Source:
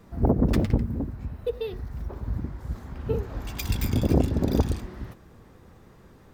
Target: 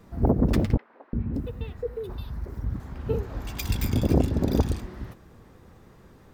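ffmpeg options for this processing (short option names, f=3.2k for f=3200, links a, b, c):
-filter_complex "[0:a]asettb=1/sr,asplit=3[a][b][c];[a]atrim=end=0.774[d];[b]atrim=start=0.77:end=2.8,asetpts=PTS-STARTPTS,afade=t=in:d=0.004:c=qsin,afade=t=out:st=2.026:d=0.004:c=qsin,acrossover=split=610|3300[e][f][g];[e]adelay=360[h];[g]adelay=570[i];[h][f][i]amix=inputs=3:normalize=0,atrim=end_sample=89523[j];[c]atrim=start=2.796[k];[d][j]acrossfade=d=0.004:c1=hsin:c2=qsin[l];[l][k]acrossfade=d=0.004:c1=qsin:c2=hsin"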